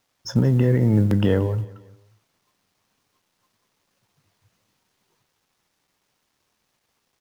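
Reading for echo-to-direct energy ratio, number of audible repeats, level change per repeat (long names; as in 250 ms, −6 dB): −19.5 dB, 3, −7.0 dB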